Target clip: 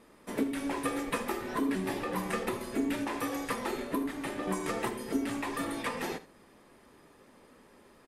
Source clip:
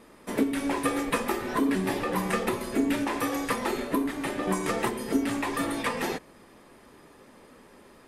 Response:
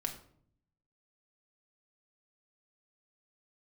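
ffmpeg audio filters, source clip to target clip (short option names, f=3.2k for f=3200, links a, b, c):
-af "aecho=1:1:77:0.158,volume=-5.5dB"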